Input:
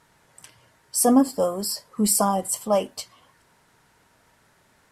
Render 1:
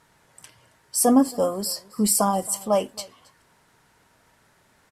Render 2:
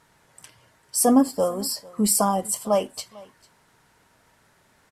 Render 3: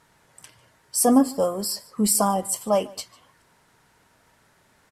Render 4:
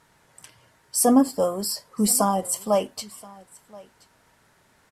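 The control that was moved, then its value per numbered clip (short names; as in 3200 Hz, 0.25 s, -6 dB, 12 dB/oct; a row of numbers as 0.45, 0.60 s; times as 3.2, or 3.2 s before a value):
echo, time: 0.271, 0.448, 0.149, 1.027 s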